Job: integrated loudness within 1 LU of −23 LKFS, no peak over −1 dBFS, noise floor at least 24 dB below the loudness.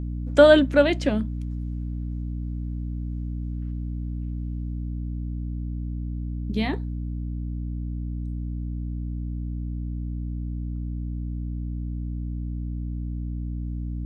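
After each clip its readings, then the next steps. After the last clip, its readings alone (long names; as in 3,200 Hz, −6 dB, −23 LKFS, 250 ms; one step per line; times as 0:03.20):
mains hum 60 Hz; hum harmonics up to 300 Hz; level of the hum −27 dBFS; integrated loudness −27.5 LKFS; sample peak −3.5 dBFS; target loudness −23.0 LKFS
→ hum removal 60 Hz, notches 5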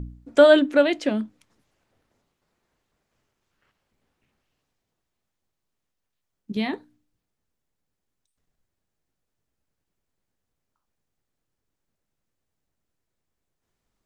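mains hum none found; integrated loudness −20.0 LKFS; sample peak −3.5 dBFS; target loudness −23.0 LKFS
→ level −3 dB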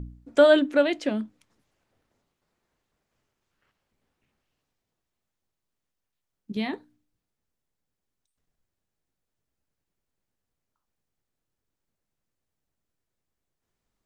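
integrated loudness −23.0 LKFS; sample peak −6.5 dBFS; background noise floor −84 dBFS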